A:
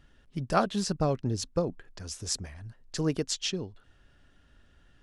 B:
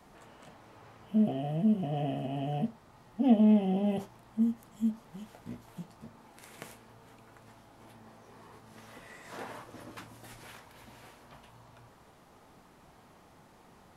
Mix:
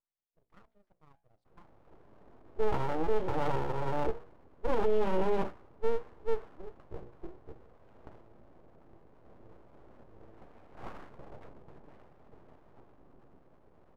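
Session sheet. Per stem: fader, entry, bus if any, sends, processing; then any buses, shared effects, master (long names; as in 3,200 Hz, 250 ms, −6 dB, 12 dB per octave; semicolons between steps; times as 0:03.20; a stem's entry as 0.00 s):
−18.5 dB, 0.00 s, no send, high-pass filter 480 Hz 12 dB per octave; amplitude modulation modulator 26 Hz, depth 35%; auto-filter bell 2.5 Hz 890–4,300 Hz +16 dB
+1.0 dB, 1.45 s, no send, low-shelf EQ 61 Hz −11.5 dB; brickwall limiter −23.5 dBFS, peak gain reduction 10 dB; automatic gain control gain up to 5 dB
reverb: not used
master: mains-hum notches 60/120/180/240/300/360/420/480 Hz; low-pass that shuts in the quiet parts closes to 330 Hz, open at −14.5 dBFS; full-wave rectification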